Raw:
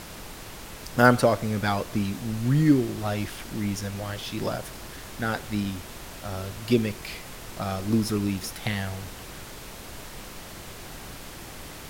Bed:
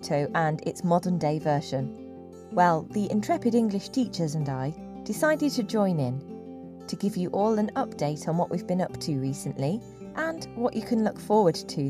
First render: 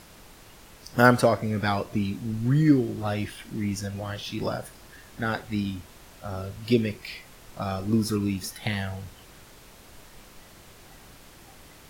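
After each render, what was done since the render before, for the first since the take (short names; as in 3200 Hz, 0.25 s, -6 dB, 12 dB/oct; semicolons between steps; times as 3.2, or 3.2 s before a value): noise print and reduce 9 dB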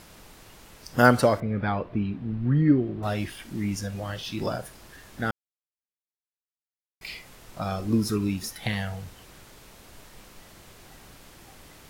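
1.4–3.03 air absorption 420 m; 5.31–7.01 mute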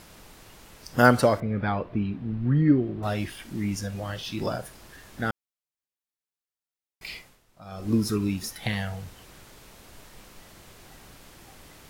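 7.17–7.89 dip -17 dB, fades 0.31 s quadratic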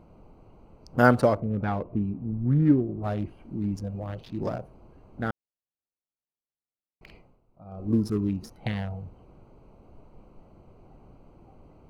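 Wiener smoothing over 25 samples; high shelf 2300 Hz -9 dB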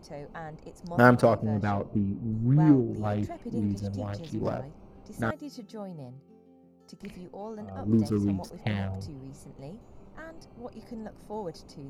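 add bed -15.5 dB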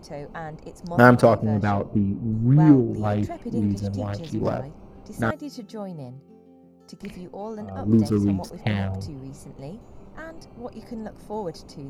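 gain +5.5 dB; limiter -1 dBFS, peak gain reduction 1 dB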